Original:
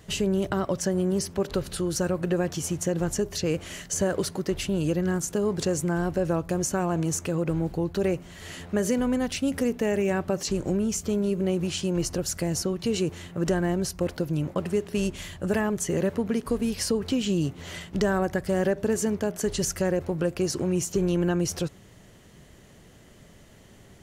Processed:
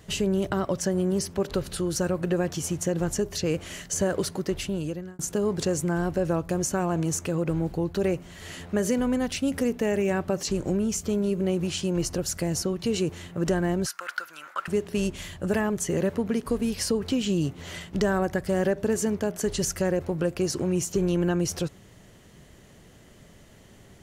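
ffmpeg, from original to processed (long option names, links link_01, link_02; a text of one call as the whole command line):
ffmpeg -i in.wav -filter_complex "[0:a]asettb=1/sr,asplit=3[link_01][link_02][link_03];[link_01]atrim=end=13.864[link_04];[link_02]atrim=start=13.86:end=14.68,asetpts=PTS-STARTPTS,afade=type=in:duration=0.004:curve=qsin,afade=type=out:start_time=0.816:duration=0.004:curve=qsin,highpass=frequency=1400:width_type=q:width=6.3[link_05];[link_03]atrim=start=14.676[link_06];[link_04][link_05]acrossfade=duration=0.004:curve1=hsin:curve2=qsin[link_07];[link_07][link_06]acrossfade=duration=0.004:curve1=qsin:curve2=hsin,asplit=2[link_08][link_09];[link_08]atrim=end=5.19,asetpts=PTS-STARTPTS,afade=type=out:start_time=4.3:duration=0.89:curve=qsin[link_10];[link_09]atrim=start=5.19,asetpts=PTS-STARTPTS,afade=type=in:duration=0.004:curve=hsin[link_11];[link_10][link_11]concat=n=2:v=0:a=1" out.wav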